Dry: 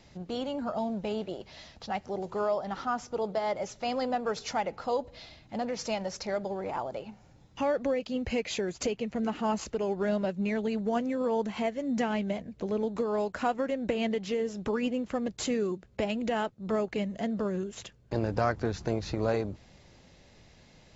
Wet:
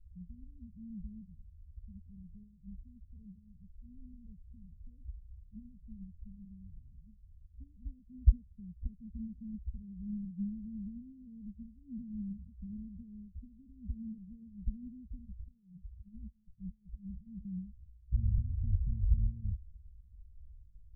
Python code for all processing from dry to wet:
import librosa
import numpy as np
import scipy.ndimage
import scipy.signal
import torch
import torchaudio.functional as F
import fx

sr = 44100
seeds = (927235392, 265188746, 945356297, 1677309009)

y = fx.chain(x, sr, fx.peak_eq(hz=250.0, db=-11.5, octaves=0.43),
    fx.over_compress(threshold_db=-38.0, ratio=-1.0), at=(15.18, 17.45))
y = scipy.signal.sosfilt(scipy.signal.cheby2(4, 80, 640.0, 'lowpass', fs=sr, output='sos'), y)
y = y + 0.8 * np.pad(y, (int(4.3 * sr / 1000.0), 0))[:len(y)]
y = fx.spectral_expand(y, sr, expansion=1.5)
y = y * 10.0 ** (17.5 / 20.0)